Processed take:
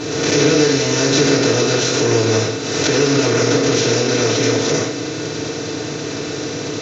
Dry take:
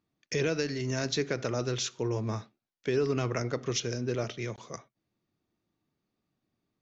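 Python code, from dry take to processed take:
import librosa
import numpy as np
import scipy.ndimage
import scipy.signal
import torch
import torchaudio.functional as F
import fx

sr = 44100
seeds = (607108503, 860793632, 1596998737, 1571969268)

y = fx.bin_compress(x, sr, power=0.2)
y = fx.rev_fdn(y, sr, rt60_s=0.47, lf_ratio=1.0, hf_ratio=1.0, size_ms=20.0, drr_db=-9.5)
y = fx.pre_swell(y, sr, db_per_s=34.0)
y = F.gain(torch.from_numpy(y), -3.5).numpy()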